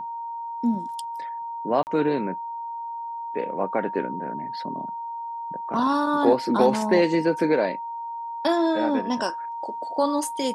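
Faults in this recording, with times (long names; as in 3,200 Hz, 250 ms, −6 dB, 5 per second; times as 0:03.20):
whistle 930 Hz −30 dBFS
0:01.83–0:01.87: drop-out 39 ms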